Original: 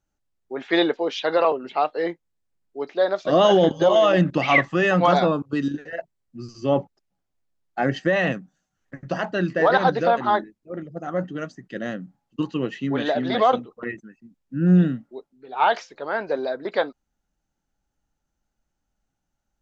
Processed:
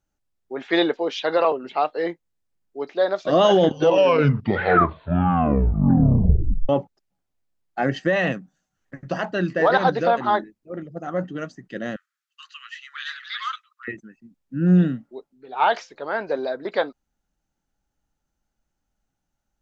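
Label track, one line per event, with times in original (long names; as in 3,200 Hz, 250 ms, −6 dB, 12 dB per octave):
3.620000	3.620000	tape stop 3.07 s
11.960000	13.880000	Butterworth high-pass 1,200 Hz 72 dB per octave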